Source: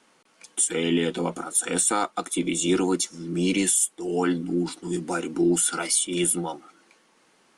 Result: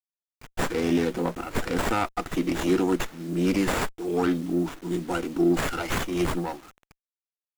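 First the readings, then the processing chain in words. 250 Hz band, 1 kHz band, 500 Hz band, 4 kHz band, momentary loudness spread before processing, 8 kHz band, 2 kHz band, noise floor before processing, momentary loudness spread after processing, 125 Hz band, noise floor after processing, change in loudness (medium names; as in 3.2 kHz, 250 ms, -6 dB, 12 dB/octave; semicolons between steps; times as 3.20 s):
0.0 dB, +1.0 dB, +0.5 dB, -5.0 dB, 8 LU, -16.5 dB, +1.5 dB, -62 dBFS, 8 LU, +1.5 dB, under -85 dBFS, -2.5 dB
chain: word length cut 8-bit, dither none; sliding maximum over 9 samples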